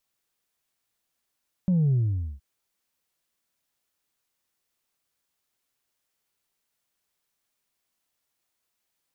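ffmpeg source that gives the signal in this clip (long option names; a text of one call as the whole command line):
ffmpeg -f lavfi -i "aevalsrc='0.112*clip((0.72-t)/0.47,0,1)*tanh(1.12*sin(2*PI*190*0.72/log(65/190)*(exp(log(65/190)*t/0.72)-1)))/tanh(1.12)':duration=0.72:sample_rate=44100" out.wav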